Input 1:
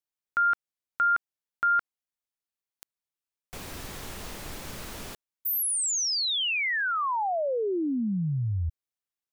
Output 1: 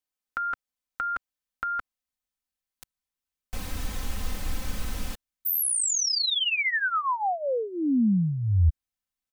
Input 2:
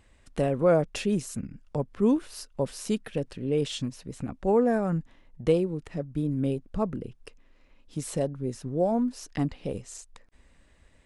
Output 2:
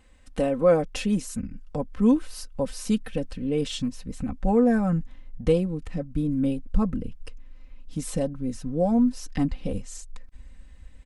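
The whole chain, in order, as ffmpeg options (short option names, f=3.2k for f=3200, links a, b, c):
-af "asubboost=boost=3.5:cutoff=180,aecho=1:1:3.9:0.69"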